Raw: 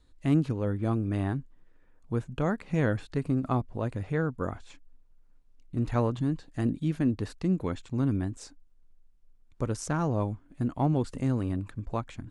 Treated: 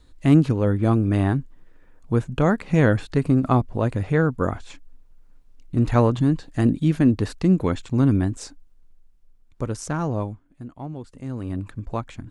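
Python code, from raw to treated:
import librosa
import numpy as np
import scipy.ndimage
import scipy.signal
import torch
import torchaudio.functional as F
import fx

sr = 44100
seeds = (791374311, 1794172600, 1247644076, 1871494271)

y = fx.gain(x, sr, db=fx.line((8.35, 9.0), (9.67, 3.0), (10.18, 3.0), (10.63, -8.0), (11.14, -8.0), (11.6, 4.0)))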